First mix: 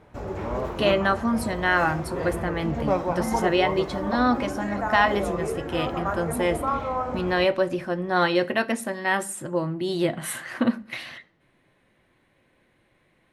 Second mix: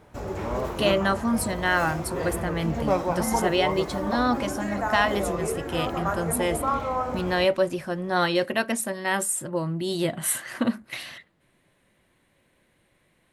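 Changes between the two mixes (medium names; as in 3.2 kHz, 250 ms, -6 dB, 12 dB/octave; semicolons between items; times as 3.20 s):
speech: send off; master: add treble shelf 5.1 kHz +11 dB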